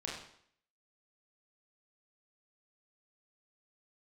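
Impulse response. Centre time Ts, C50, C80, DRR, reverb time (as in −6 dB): 49 ms, 3.0 dB, 6.5 dB, −4.5 dB, 0.65 s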